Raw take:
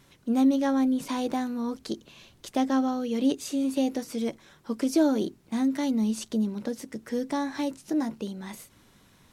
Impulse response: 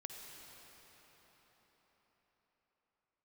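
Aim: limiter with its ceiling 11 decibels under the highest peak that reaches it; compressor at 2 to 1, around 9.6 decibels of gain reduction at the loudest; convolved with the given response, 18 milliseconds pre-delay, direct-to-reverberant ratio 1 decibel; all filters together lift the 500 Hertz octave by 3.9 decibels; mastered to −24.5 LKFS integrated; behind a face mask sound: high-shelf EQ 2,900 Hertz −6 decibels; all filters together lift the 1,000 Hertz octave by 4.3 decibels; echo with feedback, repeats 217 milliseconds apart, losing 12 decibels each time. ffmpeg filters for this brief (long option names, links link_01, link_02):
-filter_complex "[0:a]equalizer=frequency=500:width_type=o:gain=3.5,equalizer=frequency=1000:width_type=o:gain=5,acompressor=threshold=-34dB:ratio=2,alimiter=level_in=5dB:limit=-24dB:level=0:latency=1,volume=-5dB,aecho=1:1:217|434|651:0.251|0.0628|0.0157,asplit=2[link_01][link_02];[1:a]atrim=start_sample=2205,adelay=18[link_03];[link_02][link_03]afir=irnorm=-1:irlink=0,volume=2dB[link_04];[link_01][link_04]amix=inputs=2:normalize=0,highshelf=frequency=2900:gain=-6,volume=11dB"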